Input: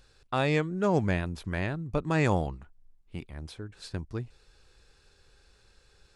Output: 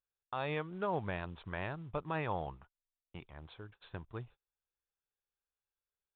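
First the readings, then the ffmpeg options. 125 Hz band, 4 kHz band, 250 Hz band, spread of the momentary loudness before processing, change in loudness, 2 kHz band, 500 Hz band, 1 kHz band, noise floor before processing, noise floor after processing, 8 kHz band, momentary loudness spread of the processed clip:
-12.5 dB, -10.0 dB, -13.5 dB, 17 LU, -10.0 dB, -9.0 dB, -9.5 dB, -6.0 dB, -63 dBFS, under -85 dBFS, under -30 dB, 16 LU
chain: -af "lowshelf=f=320:g=-10,agate=range=0.0282:threshold=0.00251:ratio=16:detection=peak,acrusher=bits=5:mode=log:mix=0:aa=0.000001,aresample=8000,aresample=44100,equalizer=f=125:t=o:w=1:g=4,equalizer=f=250:t=o:w=1:g=-4,equalizer=f=1000:t=o:w=1:g=5,equalizer=f=2000:t=o:w=1:g=-4,alimiter=limit=0.075:level=0:latency=1:release=181,volume=0.668"

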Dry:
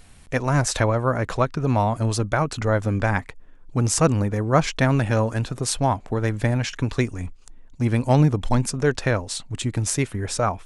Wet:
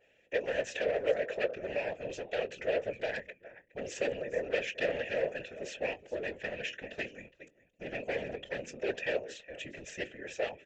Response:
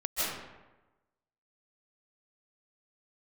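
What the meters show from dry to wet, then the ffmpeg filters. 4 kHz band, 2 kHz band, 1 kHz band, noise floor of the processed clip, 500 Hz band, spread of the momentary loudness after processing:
-11.5 dB, -8.0 dB, -20.0 dB, -68 dBFS, -7.5 dB, 12 LU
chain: -filter_complex "[0:a]bandreject=f=50:t=h:w=6,bandreject=f=100:t=h:w=6,bandreject=f=150:t=h:w=6,bandreject=f=200:t=h:w=6,bandreject=f=250:t=h:w=6,bandreject=f=300:t=h:w=6,bandreject=f=350:t=h:w=6,bandreject=f=400:t=h:w=6,bandreject=f=450:t=h:w=6,bandreject=f=500:t=h:w=6,asplit=2[s0][s1];[s1]aecho=0:1:415:0.119[s2];[s0][s2]amix=inputs=2:normalize=0,aexciter=amount=1.4:drive=3:freq=2400,aresample=16000,aeval=exprs='0.15*(abs(mod(val(0)/0.15+3,4)-2)-1)':c=same,aresample=44100,asplit=3[s3][s4][s5];[s3]bandpass=f=530:t=q:w=8,volume=1[s6];[s4]bandpass=f=1840:t=q:w=8,volume=0.501[s7];[s5]bandpass=f=2480:t=q:w=8,volume=0.355[s8];[s6][s7][s8]amix=inputs=3:normalize=0,asplit=2[s9][s10];[s10]adelay=21,volume=0.211[s11];[s9][s11]amix=inputs=2:normalize=0,afftfilt=real='hypot(re,im)*cos(2*PI*random(0))':imag='hypot(re,im)*sin(2*PI*random(1))':win_size=512:overlap=0.75,adynamicequalizer=threshold=0.002:dfrequency=1500:dqfactor=0.7:tfrequency=1500:tqfactor=0.7:attack=5:release=100:ratio=0.375:range=2:mode=boostabove:tftype=highshelf,volume=2.11"

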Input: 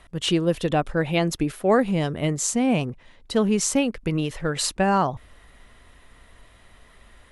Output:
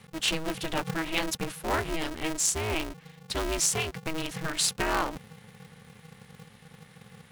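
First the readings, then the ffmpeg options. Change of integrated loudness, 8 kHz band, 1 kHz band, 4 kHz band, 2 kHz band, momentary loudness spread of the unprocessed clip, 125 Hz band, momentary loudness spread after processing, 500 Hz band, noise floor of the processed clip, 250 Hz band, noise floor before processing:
-6.0 dB, 0.0 dB, -6.5 dB, -1.0 dB, -1.5 dB, 6 LU, -11.0 dB, 9 LU, -10.0 dB, -55 dBFS, -12.0 dB, -53 dBFS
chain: -af "equalizer=f=400:w=0.57:g=-14.5,aeval=exprs='val(0)*sgn(sin(2*PI*160*n/s))':c=same"

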